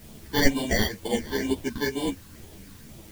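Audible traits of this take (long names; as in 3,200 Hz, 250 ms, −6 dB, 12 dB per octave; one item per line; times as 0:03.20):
aliases and images of a low sample rate 1,300 Hz, jitter 0%
phaser sweep stages 6, 2.1 Hz, lowest notch 640–1,700 Hz
a quantiser's noise floor 10 bits, dither triangular
a shimmering, thickened sound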